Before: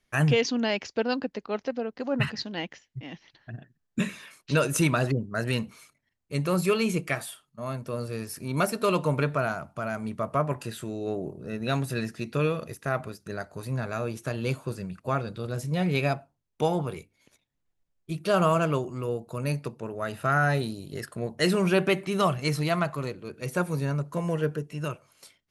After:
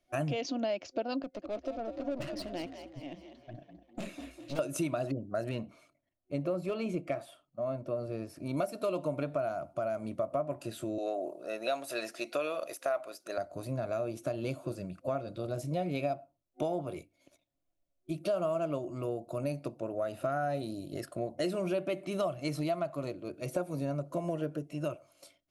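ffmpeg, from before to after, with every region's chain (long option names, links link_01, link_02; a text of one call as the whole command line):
ffmpeg -i in.wav -filter_complex "[0:a]asettb=1/sr,asplit=3[link_01][link_02][link_03];[link_01]atrim=end=1.224[link_04];[link_02]atrim=start=1.22:end=4.59,asetpts=PTS-STARTPTS,afade=type=in:duration=0.004:curve=qsin,afade=type=out:start_time=3.366:duration=0.004:curve=qsin,aeval=exprs='(tanh(39.8*val(0)+0.7)-tanh(0.7))/39.8':channel_layout=same,asplit=6[link_05][link_06][link_07][link_08][link_09][link_10];[link_06]adelay=200,afreqshift=59,volume=-9.5dB[link_11];[link_07]adelay=400,afreqshift=118,volume=-16.4dB[link_12];[link_08]adelay=600,afreqshift=177,volume=-23.4dB[link_13];[link_09]adelay=800,afreqshift=236,volume=-30.3dB[link_14];[link_10]adelay=1000,afreqshift=295,volume=-37.2dB[link_15];[link_05][link_11][link_12][link_13][link_14][link_15]amix=inputs=6:normalize=0,atrim=end_sample=148617[link_16];[link_03]atrim=start=4.586[link_17];[link_04][link_16]acrossfade=duration=0.004:curve1=hsin:curve2=qsin[link_18];[link_18][link_17]acrossfade=duration=0.004:curve1=qsin:curve2=hsin,asettb=1/sr,asplit=3[link_19][link_20][link_21];[link_19]atrim=end=5.494[link_22];[link_20]atrim=start=5.49:end=8.46,asetpts=PTS-STARTPTS,afade=type=in:duration=0.004:curve=qsin,afade=type=out:start_time=2.966:duration=0.004:curve=qsin,lowpass=frequency=1900:poles=1,asoftclip=type=hard:threshold=-17dB[link_23];[link_21]atrim=start=8.456[link_24];[link_22][link_23]acrossfade=duration=0.004:curve1=hsin:curve2=qsin[link_25];[link_25][link_24]acrossfade=duration=0.004:curve1=qsin:curve2=hsin,asettb=1/sr,asplit=3[link_26][link_27][link_28];[link_26]atrim=end=10.984[link_29];[link_27]atrim=start=10.98:end=13.38,asetpts=PTS-STARTPTS,afade=type=in:duration=0.004:curve=qsin,afade=type=out:start_time=2.396:duration=0.004:curve=qsin,highpass=670,acontrast=84[link_30];[link_28]atrim=start=13.376[link_31];[link_29][link_30]acrossfade=duration=0.004:curve1=hsin:curve2=qsin[link_32];[link_32][link_31]acrossfade=duration=0.004:curve1=qsin:curve2=hsin,superequalizer=6b=2.82:8b=3.98:11b=0.562,acompressor=threshold=-25dB:ratio=4,volume=-5.5dB" out.wav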